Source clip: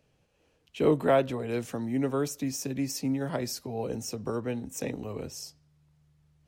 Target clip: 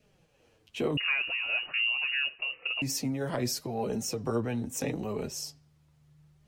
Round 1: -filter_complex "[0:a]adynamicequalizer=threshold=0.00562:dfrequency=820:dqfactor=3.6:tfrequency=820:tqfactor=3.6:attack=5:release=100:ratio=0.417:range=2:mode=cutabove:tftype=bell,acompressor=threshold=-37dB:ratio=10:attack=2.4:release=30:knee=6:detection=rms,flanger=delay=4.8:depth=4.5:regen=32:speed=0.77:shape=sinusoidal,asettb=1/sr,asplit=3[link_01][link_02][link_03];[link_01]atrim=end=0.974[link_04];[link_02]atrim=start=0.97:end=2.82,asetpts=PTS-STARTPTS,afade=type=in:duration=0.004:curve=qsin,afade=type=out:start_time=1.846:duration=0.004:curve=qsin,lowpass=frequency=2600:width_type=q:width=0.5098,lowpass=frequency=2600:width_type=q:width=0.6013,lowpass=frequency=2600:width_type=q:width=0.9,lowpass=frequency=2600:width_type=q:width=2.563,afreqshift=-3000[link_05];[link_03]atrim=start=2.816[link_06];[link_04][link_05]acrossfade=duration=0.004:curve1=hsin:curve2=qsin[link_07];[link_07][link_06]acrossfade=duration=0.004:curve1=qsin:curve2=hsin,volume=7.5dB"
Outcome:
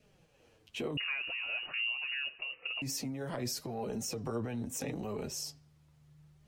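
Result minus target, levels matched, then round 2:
downward compressor: peak gain reduction +7.5 dB
-filter_complex "[0:a]adynamicequalizer=threshold=0.00562:dfrequency=820:dqfactor=3.6:tfrequency=820:tqfactor=3.6:attack=5:release=100:ratio=0.417:range=2:mode=cutabove:tftype=bell,acompressor=threshold=-28.5dB:ratio=10:attack=2.4:release=30:knee=6:detection=rms,flanger=delay=4.8:depth=4.5:regen=32:speed=0.77:shape=sinusoidal,asettb=1/sr,asplit=3[link_01][link_02][link_03];[link_01]atrim=end=0.974[link_04];[link_02]atrim=start=0.97:end=2.82,asetpts=PTS-STARTPTS,afade=type=in:duration=0.004:curve=qsin,afade=type=out:start_time=1.846:duration=0.004:curve=qsin,lowpass=frequency=2600:width_type=q:width=0.5098,lowpass=frequency=2600:width_type=q:width=0.6013,lowpass=frequency=2600:width_type=q:width=0.9,lowpass=frequency=2600:width_type=q:width=2.563,afreqshift=-3000[link_05];[link_03]atrim=start=2.816[link_06];[link_04][link_05]acrossfade=duration=0.004:curve1=hsin:curve2=qsin[link_07];[link_07][link_06]acrossfade=duration=0.004:curve1=qsin:curve2=hsin,volume=7.5dB"

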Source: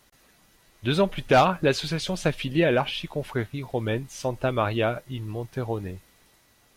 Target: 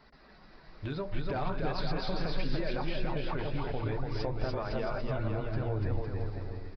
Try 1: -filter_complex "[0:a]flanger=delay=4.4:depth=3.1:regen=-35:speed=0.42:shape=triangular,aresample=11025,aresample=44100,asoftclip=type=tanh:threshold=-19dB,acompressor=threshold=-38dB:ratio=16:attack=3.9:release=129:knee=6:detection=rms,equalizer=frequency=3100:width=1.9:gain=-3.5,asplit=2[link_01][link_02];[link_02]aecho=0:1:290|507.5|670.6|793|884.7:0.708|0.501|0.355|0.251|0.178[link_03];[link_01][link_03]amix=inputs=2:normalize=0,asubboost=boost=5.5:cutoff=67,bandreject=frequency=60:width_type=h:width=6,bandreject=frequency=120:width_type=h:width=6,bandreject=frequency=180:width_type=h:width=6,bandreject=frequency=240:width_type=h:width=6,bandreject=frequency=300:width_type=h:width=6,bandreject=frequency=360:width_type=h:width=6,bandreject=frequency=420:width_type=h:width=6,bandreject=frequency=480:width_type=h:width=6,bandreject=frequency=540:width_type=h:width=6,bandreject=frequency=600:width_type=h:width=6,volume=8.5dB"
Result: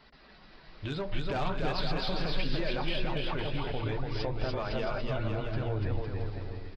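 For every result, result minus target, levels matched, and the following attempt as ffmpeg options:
soft clipping: distortion +19 dB; 4,000 Hz band +5.0 dB
-filter_complex "[0:a]flanger=delay=4.4:depth=3.1:regen=-35:speed=0.42:shape=triangular,aresample=11025,aresample=44100,asoftclip=type=tanh:threshold=-7dB,acompressor=threshold=-38dB:ratio=16:attack=3.9:release=129:knee=6:detection=rms,equalizer=frequency=3100:width=1.9:gain=-3.5,asplit=2[link_01][link_02];[link_02]aecho=0:1:290|507.5|670.6|793|884.7:0.708|0.501|0.355|0.251|0.178[link_03];[link_01][link_03]amix=inputs=2:normalize=0,asubboost=boost=5.5:cutoff=67,bandreject=frequency=60:width_type=h:width=6,bandreject=frequency=120:width_type=h:width=6,bandreject=frequency=180:width_type=h:width=6,bandreject=frequency=240:width_type=h:width=6,bandreject=frequency=300:width_type=h:width=6,bandreject=frequency=360:width_type=h:width=6,bandreject=frequency=420:width_type=h:width=6,bandreject=frequency=480:width_type=h:width=6,bandreject=frequency=540:width_type=h:width=6,bandreject=frequency=600:width_type=h:width=6,volume=8.5dB"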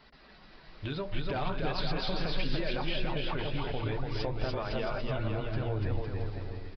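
4,000 Hz band +5.0 dB
-filter_complex "[0:a]flanger=delay=4.4:depth=3.1:regen=-35:speed=0.42:shape=triangular,aresample=11025,aresample=44100,asoftclip=type=tanh:threshold=-7dB,acompressor=threshold=-38dB:ratio=16:attack=3.9:release=129:knee=6:detection=rms,equalizer=frequency=3100:width=1.9:gain=-13,asplit=2[link_01][link_02];[link_02]aecho=0:1:290|507.5|670.6|793|884.7:0.708|0.501|0.355|0.251|0.178[link_03];[link_01][link_03]amix=inputs=2:normalize=0,asubboost=boost=5.5:cutoff=67,bandreject=frequency=60:width_type=h:width=6,bandreject=frequency=120:width_type=h:width=6,bandreject=frequency=180:width_type=h:width=6,bandreject=frequency=240:width_type=h:width=6,bandreject=frequency=300:width_type=h:width=6,bandreject=frequency=360:width_type=h:width=6,bandreject=frequency=420:width_type=h:width=6,bandreject=frequency=480:width_type=h:width=6,bandreject=frequency=540:width_type=h:width=6,bandreject=frequency=600:width_type=h:width=6,volume=8.5dB"

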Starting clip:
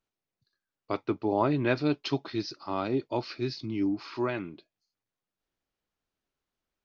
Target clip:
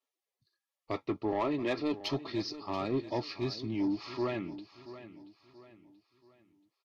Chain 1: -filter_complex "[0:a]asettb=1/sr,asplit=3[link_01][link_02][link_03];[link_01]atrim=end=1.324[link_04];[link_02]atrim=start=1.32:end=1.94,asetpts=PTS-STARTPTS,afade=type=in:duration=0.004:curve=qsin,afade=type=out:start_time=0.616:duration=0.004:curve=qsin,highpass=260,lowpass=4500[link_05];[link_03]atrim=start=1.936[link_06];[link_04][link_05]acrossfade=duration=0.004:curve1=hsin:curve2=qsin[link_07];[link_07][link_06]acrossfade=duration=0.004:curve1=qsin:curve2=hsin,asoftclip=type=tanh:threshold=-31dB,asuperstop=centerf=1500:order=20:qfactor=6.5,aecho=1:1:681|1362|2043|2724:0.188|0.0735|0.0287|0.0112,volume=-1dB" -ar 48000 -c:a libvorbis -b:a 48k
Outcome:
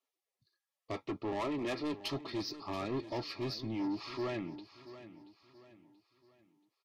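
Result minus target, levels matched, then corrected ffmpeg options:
soft clipping: distortion +7 dB
-filter_complex "[0:a]asettb=1/sr,asplit=3[link_01][link_02][link_03];[link_01]atrim=end=1.324[link_04];[link_02]atrim=start=1.32:end=1.94,asetpts=PTS-STARTPTS,afade=type=in:duration=0.004:curve=qsin,afade=type=out:start_time=0.616:duration=0.004:curve=qsin,highpass=260,lowpass=4500[link_05];[link_03]atrim=start=1.936[link_06];[link_04][link_05]acrossfade=duration=0.004:curve1=hsin:curve2=qsin[link_07];[link_07][link_06]acrossfade=duration=0.004:curve1=qsin:curve2=hsin,asoftclip=type=tanh:threshold=-23dB,asuperstop=centerf=1500:order=20:qfactor=6.5,aecho=1:1:681|1362|2043|2724:0.188|0.0735|0.0287|0.0112,volume=-1dB" -ar 48000 -c:a libvorbis -b:a 48k

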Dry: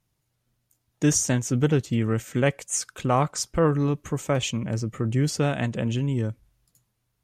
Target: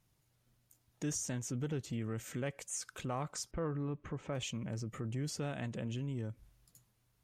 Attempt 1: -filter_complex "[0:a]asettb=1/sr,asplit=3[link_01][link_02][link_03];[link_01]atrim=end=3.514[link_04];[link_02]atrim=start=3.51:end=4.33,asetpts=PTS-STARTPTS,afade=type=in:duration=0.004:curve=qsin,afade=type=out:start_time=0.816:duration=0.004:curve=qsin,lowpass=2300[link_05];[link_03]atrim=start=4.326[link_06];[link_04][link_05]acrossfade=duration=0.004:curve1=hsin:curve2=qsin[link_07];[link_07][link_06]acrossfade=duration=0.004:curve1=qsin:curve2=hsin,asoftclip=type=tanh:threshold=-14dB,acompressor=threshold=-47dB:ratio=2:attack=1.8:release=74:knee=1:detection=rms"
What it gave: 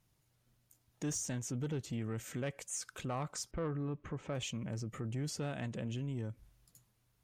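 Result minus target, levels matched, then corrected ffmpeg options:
soft clipping: distortion +14 dB
-filter_complex "[0:a]asettb=1/sr,asplit=3[link_01][link_02][link_03];[link_01]atrim=end=3.514[link_04];[link_02]atrim=start=3.51:end=4.33,asetpts=PTS-STARTPTS,afade=type=in:duration=0.004:curve=qsin,afade=type=out:start_time=0.816:duration=0.004:curve=qsin,lowpass=2300[link_05];[link_03]atrim=start=4.326[link_06];[link_04][link_05]acrossfade=duration=0.004:curve1=hsin:curve2=qsin[link_07];[link_07][link_06]acrossfade=duration=0.004:curve1=qsin:curve2=hsin,asoftclip=type=tanh:threshold=-5.5dB,acompressor=threshold=-47dB:ratio=2:attack=1.8:release=74:knee=1:detection=rms"

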